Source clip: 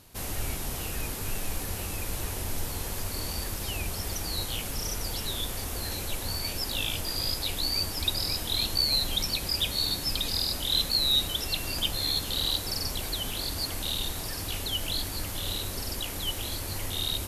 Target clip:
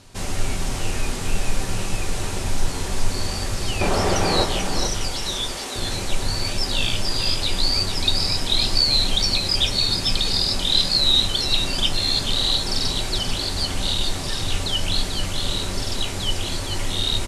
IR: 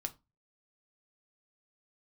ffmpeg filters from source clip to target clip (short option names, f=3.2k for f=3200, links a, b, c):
-filter_complex "[0:a]lowpass=f=8.8k:w=0.5412,lowpass=f=8.8k:w=1.3066,asettb=1/sr,asplit=3[a][b][c];[a]atrim=end=3.814[d];[b]atrim=start=3.81:end=4.44,asetpts=PTS-STARTPTS,afade=t=in:d=0.004:c=qsin,afade=t=out:st=0.626:d=0.004:c=qsin,equalizer=f=610:w=0.3:g=14[e];[c]atrim=start=4.436[f];[d][e]acrossfade=d=0.004:c1=hsin:c2=qsin[g];[g][f]acrossfade=d=0.004:c1=qsin:c2=hsin,asettb=1/sr,asplit=3[h][i][j];[h]atrim=end=5.104[k];[i]atrim=start=5.1:end=5.76,asetpts=PTS-STARTPTS,afade=t=in:d=0.004:c=qsin,afade=t=out:st=0.656:d=0.004:c=qsin,highpass=310[l];[j]atrim=start=5.756[m];[k][l]acrossfade=d=0.004:c1=hsin:c2=qsin[n];[n][m]acrossfade=d=0.004:c1=qsin:c2=hsin,aecho=1:1:439:0.447[o];[1:a]atrim=start_sample=2205[p];[o][p]afir=irnorm=-1:irlink=0,volume=8dB"